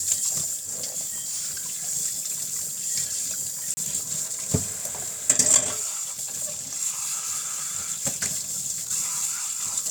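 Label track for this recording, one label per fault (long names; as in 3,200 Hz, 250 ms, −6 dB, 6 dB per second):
1.010000	1.890000	clipping −26.5 dBFS
3.740000	3.770000	drop-out 30 ms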